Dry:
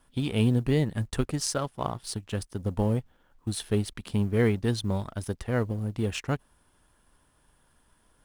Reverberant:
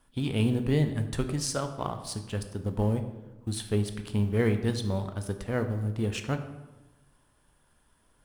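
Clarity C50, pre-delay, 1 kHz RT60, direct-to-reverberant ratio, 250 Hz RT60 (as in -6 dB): 10.0 dB, 14 ms, 1.0 s, 7.0 dB, 1.3 s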